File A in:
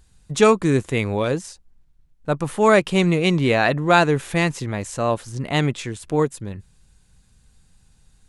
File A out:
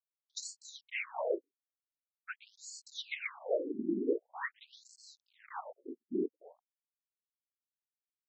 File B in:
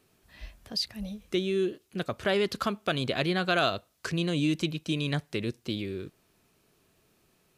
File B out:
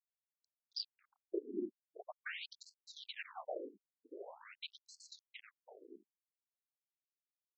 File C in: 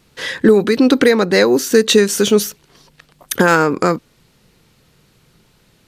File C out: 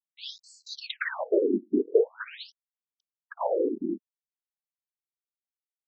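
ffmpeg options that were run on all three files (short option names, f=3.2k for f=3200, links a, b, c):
-af "afftfilt=real='hypot(re,im)*cos(2*PI*random(0))':imag='hypot(re,im)*sin(2*PI*random(1))':win_size=512:overlap=0.75,aeval=exprs='sgn(val(0))*max(abs(val(0))-0.0126,0)':c=same,afftfilt=real='re*between(b*sr/1024,270*pow(6000/270,0.5+0.5*sin(2*PI*0.45*pts/sr))/1.41,270*pow(6000/270,0.5+0.5*sin(2*PI*0.45*pts/sr))*1.41)':imag='im*between(b*sr/1024,270*pow(6000/270,0.5+0.5*sin(2*PI*0.45*pts/sr))/1.41,270*pow(6000/270,0.5+0.5*sin(2*PI*0.45*pts/sr))*1.41)':win_size=1024:overlap=0.75,volume=-1.5dB"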